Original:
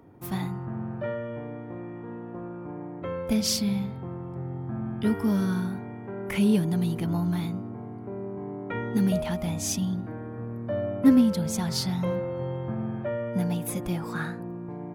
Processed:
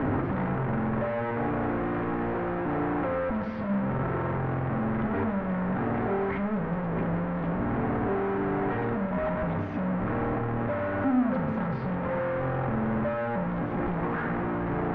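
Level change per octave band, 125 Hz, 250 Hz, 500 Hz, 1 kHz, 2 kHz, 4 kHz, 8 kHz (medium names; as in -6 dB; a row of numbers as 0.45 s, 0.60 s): 0.0 dB, -2.0 dB, +3.0 dB, +9.0 dB, +6.0 dB, under -15 dB, under -40 dB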